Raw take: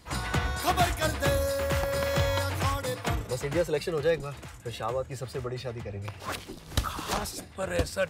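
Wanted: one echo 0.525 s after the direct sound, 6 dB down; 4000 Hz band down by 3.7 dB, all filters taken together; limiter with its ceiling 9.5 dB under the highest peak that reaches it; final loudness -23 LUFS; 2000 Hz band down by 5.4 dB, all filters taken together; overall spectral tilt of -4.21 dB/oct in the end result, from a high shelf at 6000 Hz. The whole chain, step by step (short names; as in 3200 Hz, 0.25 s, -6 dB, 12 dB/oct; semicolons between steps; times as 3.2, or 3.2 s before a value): bell 2000 Hz -7 dB; bell 4000 Hz -6 dB; high shelf 6000 Hz +9 dB; limiter -21 dBFS; echo 0.525 s -6 dB; gain +8.5 dB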